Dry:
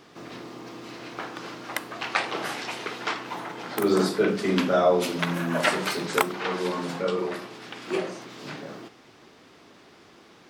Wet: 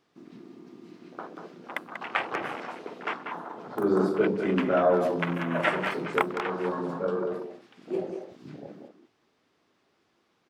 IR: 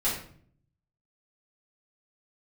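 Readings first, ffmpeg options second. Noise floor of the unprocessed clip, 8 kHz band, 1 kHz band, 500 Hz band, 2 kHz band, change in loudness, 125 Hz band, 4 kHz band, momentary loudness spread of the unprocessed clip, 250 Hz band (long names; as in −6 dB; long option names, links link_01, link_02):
−53 dBFS, below −15 dB, −2.0 dB, −1.5 dB, −3.0 dB, −1.5 dB, −2.0 dB, −10.0 dB, 17 LU, −1.5 dB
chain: -filter_complex "[0:a]afwtdn=0.0316,asplit=2[link_01][link_02];[link_02]adelay=190,highpass=300,lowpass=3400,asoftclip=type=hard:threshold=-14dB,volume=-6dB[link_03];[link_01][link_03]amix=inputs=2:normalize=0,volume=-2dB"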